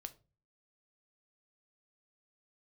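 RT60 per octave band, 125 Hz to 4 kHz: 0.55, 0.50, 0.40, 0.30, 0.25, 0.25 s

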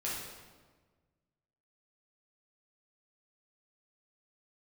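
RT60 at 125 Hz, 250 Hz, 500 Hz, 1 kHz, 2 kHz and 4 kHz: 2.0, 1.7, 1.5, 1.3, 1.1, 1.0 s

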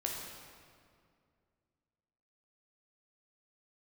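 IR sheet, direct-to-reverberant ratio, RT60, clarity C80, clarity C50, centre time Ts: -1.5 dB, 2.2 s, 2.5 dB, 1.0 dB, 89 ms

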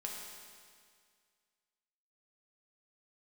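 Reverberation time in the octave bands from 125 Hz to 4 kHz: 2.0, 2.0, 2.0, 2.0, 2.0, 2.0 s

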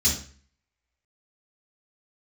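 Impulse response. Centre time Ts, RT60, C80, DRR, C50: 30 ms, 0.45 s, 11.0 dB, -5.5 dB, 5.5 dB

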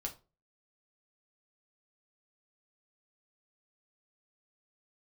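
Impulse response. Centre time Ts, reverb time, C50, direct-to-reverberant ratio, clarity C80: 11 ms, 0.30 s, 14.5 dB, 1.5 dB, 21.0 dB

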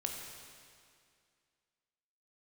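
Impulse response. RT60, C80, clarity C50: 2.2 s, 3.5 dB, 2.5 dB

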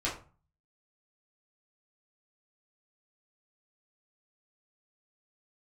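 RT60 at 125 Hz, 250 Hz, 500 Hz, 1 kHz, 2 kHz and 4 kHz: 0.65, 0.45, 0.35, 0.40, 0.30, 0.25 s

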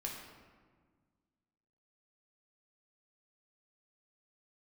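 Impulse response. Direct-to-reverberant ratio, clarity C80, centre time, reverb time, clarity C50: -2.0 dB, 5.0 dB, 58 ms, 1.6 s, 3.0 dB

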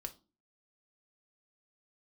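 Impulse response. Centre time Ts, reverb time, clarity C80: 5 ms, 0.35 s, 24.5 dB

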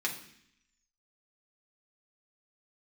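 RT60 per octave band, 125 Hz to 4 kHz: 0.85, 0.90, 0.65, 0.65, 0.85, 0.85 s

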